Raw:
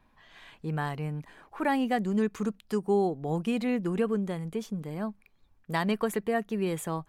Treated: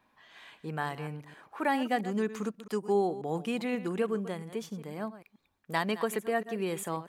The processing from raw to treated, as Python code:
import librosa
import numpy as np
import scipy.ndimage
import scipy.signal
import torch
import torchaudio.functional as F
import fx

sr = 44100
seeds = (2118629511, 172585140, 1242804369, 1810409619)

y = fx.reverse_delay(x, sr, ms=134, wet_db=-13.5)
y = fx.highpass(y, sr, hz=320.0, slope=6)